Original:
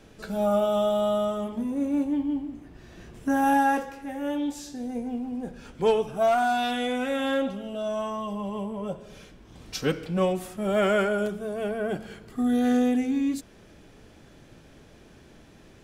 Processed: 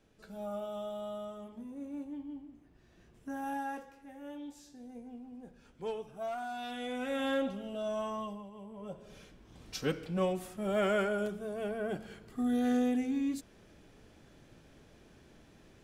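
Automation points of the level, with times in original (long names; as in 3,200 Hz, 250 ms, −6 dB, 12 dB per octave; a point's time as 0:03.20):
0:06.50 −16 dB
0:07.21 −6 dB
0:08.23 −6 dB
0:08.51 −18.5 dB
0:09.10 −7 dB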